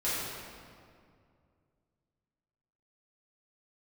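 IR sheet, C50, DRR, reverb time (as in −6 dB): −3.0 dB, −11.5 dB, 2.2 s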